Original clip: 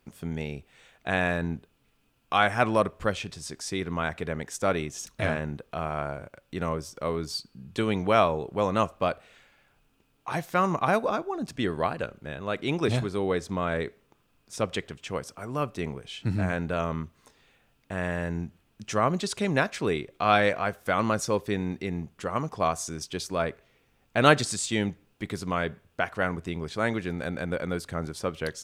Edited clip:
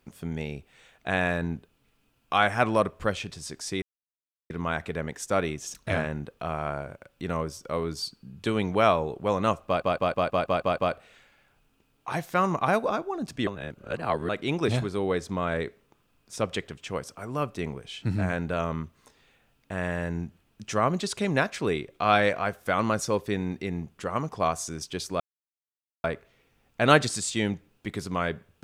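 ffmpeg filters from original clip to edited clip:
-filter_complex "[0:a]asplit=12[s0][s1][s2][s3][s4][s5][s6][s7][s8][s9][s10][s11];[s0]atrim=end=3.82,asetpts=PTS-STARTPTS,afade=t=out:st=3.816:d=0.004:c=hsin,apad=pad_dur=0.68[s12];[s1]atrim=start=3.82:end=9.142,asetpts=PTS-STARTPTS,afade=t=in:d=0.004:c=hsin[s13];[s2]atrim=start=8.978:end=9.142[s14];[s3]atrim=start=8.978:end=9.142[s15];[s4]atrim=start=8.978:end=9.142[s16];[s5]atrim=start=8.978:end=9.142[s17];[s6]atrim=start=8.978:end=9.142[s18];[s7]atrim=start=8.978:end=9.142[s19];[s8]atrim=start=8.978:end=11.672[s20];[s9]atrim=start=11.668:end=12.492,asetpts=PTS-STARTPTS,areverse[s21];[s10]atrim=start=12.488:end=23.4,asetpts=PTS-STARTPTS,afade=t=out:st=10.908:d=0.004:c=hsin,apad=pad_dur=0.84[s22];[s11]atrim=start=23.4,asetpts=PTS-STARTPTS,afade=t=in:d=0.004:c=hsin[s23];[s12][s13]concat=n=2:v=0:a=1[s24];[s24][s14]acrossfade=d=0.004:c1=hsin:c2=hsin[s25];[s25][s15]acrossfade=d=0.004:c1=hsin:c2=hsin[s26];[s26][s16]acrossfade=d=0.004:c1=hsin:c2=hsin[s27];[s27][s17]acrossfade=d=0.004:c1=hsin:c2=hsin[s28];[s28][s18]acrossfade=d=0.004:c1=hsin:c2=hsin[s29];[s29][s19]acrossfade=d=0.004:c1=hsin:c2=hsin[s30];[s30][s20]acrossfade=d=0.004:c1=hsin:c2=hsin[s31];[s31][s21]acrossfade=d=0.004:c1=hsin:c2=hsin[s32];[s22][s23]concat=n=2:v=0:a=1[s33];[s32][s33]acrossfade=d=0.004:c1=hsin:c2=hsin"

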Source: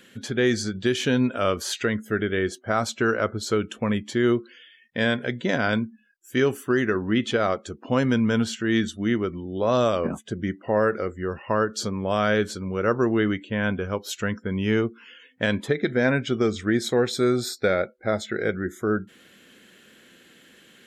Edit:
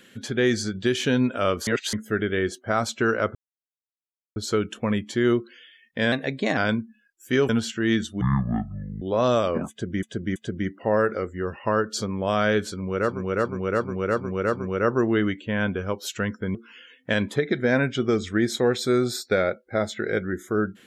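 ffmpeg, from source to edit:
-filter_complex "[0:a]asplit=17[s0][s1][s2][s3][s4][s5][s6][s7][s8][s9][s10][s11][s12][s13][s14][s15][s16];[s0]atrim=end=1.672[s17];[s1]atrim=start=1.668:end=1.932,asetpts=PTS-STARTPTS,areverse[s18];[s2]atrim=start=1.928:end=3.35,asetpts=PTS-STARTPTS,afade=t=out:st=1.418:d=0.004:c=hsin,apad=pad_dur=1.01[s19];[s3]atrim=start=3.35:end=5.114,asetpts=PTS-STARTPTS,afade=t=in:d=0.004:c=hsin[s20];[s4]atrim=start=5.11:end=5.61,asetpts=PTS-STARTPTS,asetrate=48951,aresample=44100[s21];[s5]atrim=start=5.606:end=6.532[s22];[s6]atrim=start=8.328:end=9.054[s23];[s7]atrim=start=9.05:end=9.51,asetpts=PTS-STARTPTS,asetrate=25137,aresample=44100,atrim=end_sample=35589,asetpts=PTS-STARTPTS[s24];[s8]atrim=start=9.506:end=10.522[s25];[s9]atrim=start=10.188:end=10.522[s26];[s10]atrim=start=10.188:end=13.08[s27];[s11]atrim=start=12.48:end=13.08[s28];[s12]atrim=start=12.48:end=13.08[s29];[s13]atrim=start=12.48:end=13.08[s30];[s14]atrim=start=12.48:end=13.08[s31];[s15]atrim=start=12.48:end=14.582[s32];[s16]atrim=start=14.868[s33];[s17][s18]acrossfade=d=0.004:c1=hsin:c2=hsin[s34];[s19][s20]concat=n=2:v=0:a=1[s35];[s34][s35]acrossfade=d=0.004:c1=hsin:c2=hsin[s36];[s36][s21]acrossfade=d=0.004:c1=hsin:c2=hsin[s37];[s37][s22]acrossfade=d=0.004:c1=hsin:c2=hsin[s38];[s38][s23]acrossfade=d=0.004:c1=hsin:c2=hsin[s39];[s39][s24]acrossfade=d=0.004:c1=hsin:c2=hsin[s40];[s40][s25]acrossfade=d=0.004:c1=hsin:c2=hsin[s41];[s41][s26]acrossfade=d=0.004:c1=hsin:c2=hsin[s42];[s42][s27]acrossfade=d=0.004:c1=hsin:c2=hsin[s43];[s43][s28]acrossfade=d=0.24:c1=tri:c2=tri[s44];[s44][s29]acrossfade=d=0.24:c1=tri:c2=tri[s45];[s45][s30]acrossfade=d=0.24:c1=tri:c2=tri[s46];[s46][s31]acrossfade=d=0.24:c1=tri:c2=tri[s47];[s47][s32]acrossfade=d=0.24:c1=tri:c2=tri[s48];[s48][s33]acrossfade=d=0.004:c1=hsin:c2=hsin"

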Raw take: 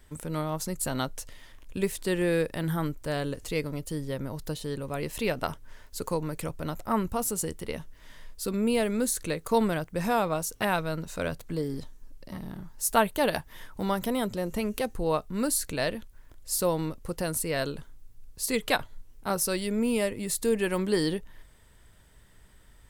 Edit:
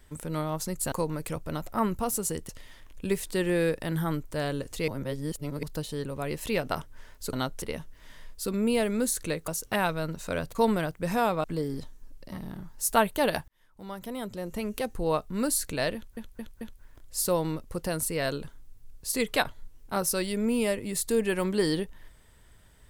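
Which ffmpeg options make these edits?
-filter_complex "[0:a]asplit=14[s0][s1][s2][s3][s4][s5][s6][s7][s8][s9][s10][s11][s12][s13];[s0]atrim=end=0.922[s14];[s1]atrim=start=6.048:end=7.622[s15];[s2]atrim=start=1.208:end=3.602[s16];[s3]atrim=start=3.598:end=4.352,asetpts=PTS-STARTPTS,areverse[s17];[s4]atrim=start=4.348:end=6.052[s18];[s5]atrim=start=0.918:end=1.212[s19];[s6]atrim=start=7.618:end=9.482[s20];[s7]atrim=start=10.368:end=11.442[s21];[s8]atrim=start=9.478:end=10.372[s22];[s9]atrim=start=11.438:end=13.48,asetpts=PTS-STARTPTS,afade=t=out:st=2.038:d=0.004:c=hsin[s23];[s10]atrim=start=13.48:end=16.172,asetpts=PTS-STARTPTS,afade=t=in:d=1.59[s24];[s11]atrim=start=15.948:end=16.172[s25];[s12]atrim=start=15.948:end=16.172[s26];[s13]atrim=start=15.948[s27];[s14][s15]acrossfade=d=0.004:c1=hsin:c2=hsin[s28];[s28][s16]acrossfade=d=0.004:c1=hsin:c2=hsin[s29];[s29][s17]acrossfade=d=0.004:c1=hsin:c2=hsin[s30];[s30][s18]acrossfade=d=0.004:c1=hsin:c2=hsin[s31];[s31][s19]acrossfade=d=0.004:c1=hsin:c2=hsin[s32];[s32][s20]acrossfade=d=0.004:c1=hsin:c2=hsin[s33];[s33][s21]acrossfade=d=0.004:c1=hsin:c2=hsin[s34];[s34][s22]acrossfade=d=0.004:c1=hsin:c2=hsin[s35];[s23][s24]concat=n=2:v=0:a=1[s36];[s35][s36]acrossfade=d=0.004:c1=hsin:c2=hsin[s37];[s37][s25]acrossfade=d=0.004:c1=hsin:c2=hsin[s38];[s38][s26]acrossfade=d=0.004:c1=hsin:c2=hsin[s39];[s39][s27]acrossfade=d=0.004:c1=hsin:c2=hsin"

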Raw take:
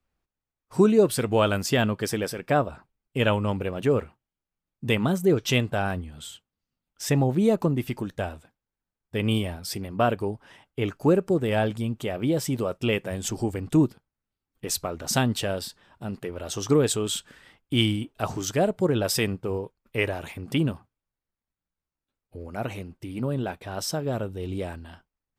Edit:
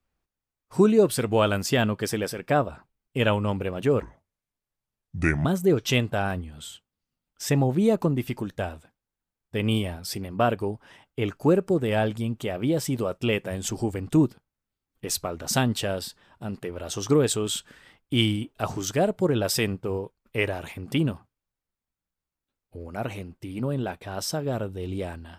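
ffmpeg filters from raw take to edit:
-filter_complex "[0:a]asplit=3[s0][s1][s2];[s0]atrim=end=4.024[s3];[s1]atrim=start=4.02:end=5.05,asetpts=PTS-STARTPTS,asetrate=31752,aresample=44100[s4];[s2]atrim=start=5.046[s5];[s3][s4]acrossfade=d=0.004:c1=hsin:c2=hsin[s6];[s6][s5]acrossfade=d=0.004:c1=hsin:c2=hsin"

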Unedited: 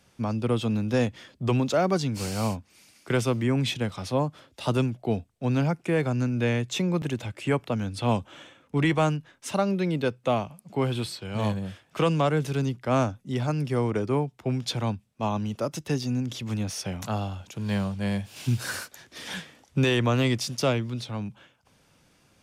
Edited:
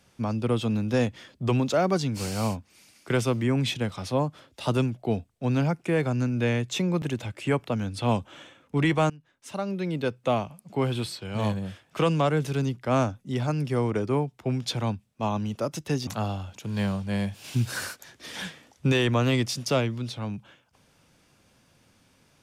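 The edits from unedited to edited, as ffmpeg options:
-filter_complex "[0:a]asplit=3[s0][s1][s2];[s0]atrim=end=9.1,asetpts=PTS-STARTPTS,afade=t=out:st=9.096:d=0.004:c=hsin:silence=0.0944061[s3];[s1]atrim=start=9.1:end=16.072,asetpts=PTS-STARTPTS,afade=t=in:d=1.15:silence=0.0944061[s4];[s2]atrim=start=16.988[s5];[s3][s4]concat=n=2:v=0:a=1[s6];[s6][s5]acrossfade=d=0.004:c1=hsin:c2=hsin"

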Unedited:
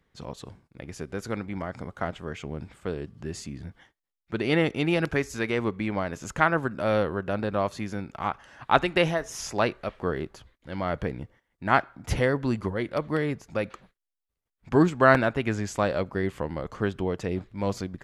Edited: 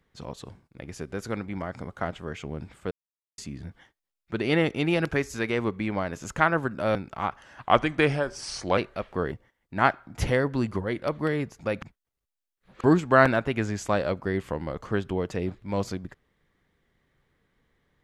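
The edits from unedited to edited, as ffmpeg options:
-filter_complex "[0:a]asplit=9[s0][s1][s2][s3][s4][s5][s6][s7][s8];[s0]atrim=end=2.91,asetpts=PTS-STARTPTS,afade=t=out:st=2.906:d=0.004:c=hsin[s9];[s1]atrim=start=2.91:end=3.38,asetpts=PTS-STARTPTS,volume=0[s10];[s2]atrim=start=3.38:end=6.952,asetpts=PTS-STARTPTS,afade=t=in:d=0.004:c=hsin[s11];[s3]atrim=start=7.968:end=8.674[s12];[s4]atrim=start=8.67:end=9.65,asetpts=PTS-STARTPTS,asetrate=38367,aresample=44100[s13];[s5]atrim=start=9.646:end=10.192[s14];[s6]atrim=start=11.208:end=13.712[s15];[s7]atrim=start=13.708:end=14.732,asetpts=PTS-STARTPTS,areverse[s16];[s8]atrim=start=14.728[s17];[s9][s10][s11]concat=n=3:v=0:a=1[s18];[s18][s12]acrossfade=d=0.004:c1=hsin:c2=hsin[s19];[s19][s13]acrossfade=d=0.004:c1=hsin:c2=hsin[s20];[s20][s14]acrossfade=d=0.004:c1=hsin:c2=hsin[s21];[s21][s15]acrossfade=d=0.004:c1=hsin:c2=hsin[s22];[s22][s16]acrossfade=d=0.004:c1=hsin:c2=hsin[s23];[s23][s17]acrossfade=d=0.004:c1=hsin:c2=hsin"

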